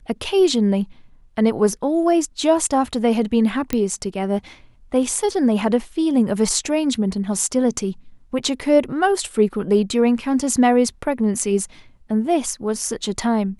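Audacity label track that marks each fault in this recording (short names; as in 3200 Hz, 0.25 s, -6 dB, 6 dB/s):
3.730000	3.730000	pop -7 dBFS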